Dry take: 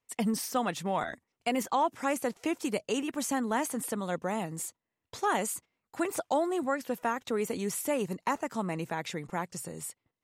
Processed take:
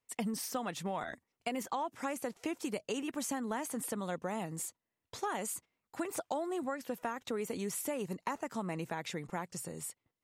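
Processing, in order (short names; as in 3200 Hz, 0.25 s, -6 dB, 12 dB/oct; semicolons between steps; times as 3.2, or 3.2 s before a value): compressor, threshold -30 dBFS, peak gain reduction 7.5 dB; gain -2.5 dB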